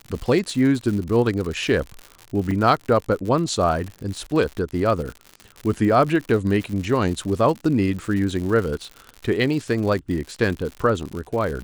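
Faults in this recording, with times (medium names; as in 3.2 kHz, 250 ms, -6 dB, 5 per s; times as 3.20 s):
crackle 100 per s -28 dBFS
2.51 s: dropout 3.9 ms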